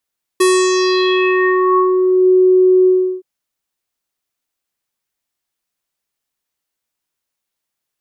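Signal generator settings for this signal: synth note square F#4 24 dB/oct, low-pass 490 Hz, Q 3.3, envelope 4.5 oct, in 1.87 s, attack 8.8 ms, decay 0.29 s, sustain -4 dB, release 0.35 s, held 2.47 s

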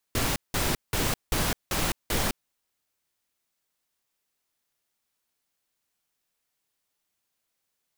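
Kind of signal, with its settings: noise bursts pink, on 0.21 s, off 0.18 s, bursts 6, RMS -26 dBFS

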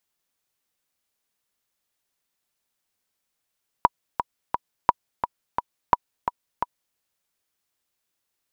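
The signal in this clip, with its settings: metronome 173 bpm, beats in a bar 3, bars 3, 970 Hz, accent 8.5 dB -1.5 dBFS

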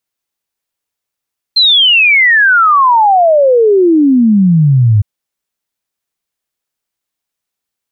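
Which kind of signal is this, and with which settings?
log sweep 4200 Hz -> 100 Hz 3.46 s -4.5 dBFS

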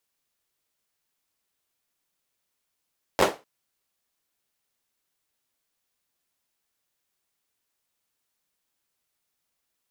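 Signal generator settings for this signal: hand clap length 0.25 s, apart 11 ms, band 510 Hz, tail 0.26 s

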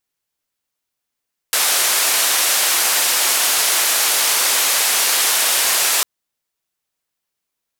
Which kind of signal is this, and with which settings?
noise band 550–13000 Hz, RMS -16.5 dBFS 4.50 s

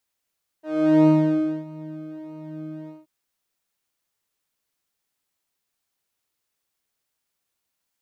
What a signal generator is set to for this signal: synth patch with pulse-width modulation D#4, interval -12 st, detune 14 cents, oscillator 2 level -10 dB, filter bandpass, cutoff 160 Hz, Q 1.1, filter envelope 2 oct, filter decay 0.59 s, filter sustain 5%, attack 0.444 s, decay 0.57 s, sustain -20 dB, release 0.17 s, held 2.26 s, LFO 1.6 Hz, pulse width 26%, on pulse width 8%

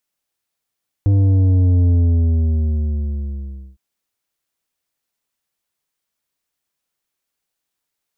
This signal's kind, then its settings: sub drop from 100 Hz, over 2.71 s, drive 8.5 dB, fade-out 1.87 s, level -11.5 dB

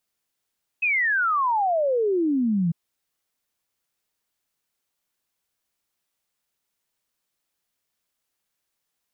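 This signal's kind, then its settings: log sweep 2600 Hz -> 160 Hz 1.90 s -19 dBFS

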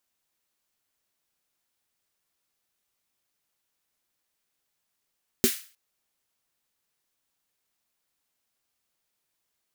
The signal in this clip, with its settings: snare drum length 0.31 s, tones 240 Hz, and 380 Hz, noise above 1600 Hz, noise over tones -5 dB, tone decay 0.09 s, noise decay 0.39 s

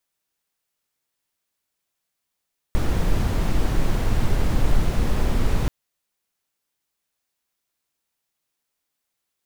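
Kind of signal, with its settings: noise brown, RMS -18 dBFS 2.93 s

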